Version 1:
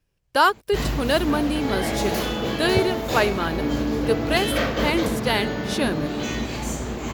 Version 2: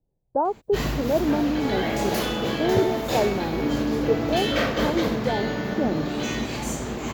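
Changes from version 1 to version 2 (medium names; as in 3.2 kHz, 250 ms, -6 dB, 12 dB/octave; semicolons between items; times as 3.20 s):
speech: add elliptic low-pass 830 Hz, stop band 80 dB; master: add peaking EQ 69 Hz -10.5 dB 0.47 oct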